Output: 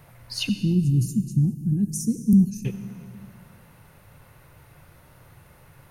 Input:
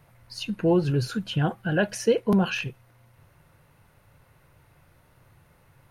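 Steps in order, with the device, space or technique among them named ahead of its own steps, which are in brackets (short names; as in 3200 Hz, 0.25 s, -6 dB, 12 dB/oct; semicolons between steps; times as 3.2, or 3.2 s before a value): high shelf 9400 Hz +5 dB; 0.49–2.65 elliptic band-stop 240–6900 Hz, stop band 40 dB; compressed reverb return (on a send at -9.5 dB: reverb RT60 1.8 s, pre-delay 66 ms + compressor, threshold -27 dBFS, peak gain reduction 8.5 dB); on the sum: gain +6 dB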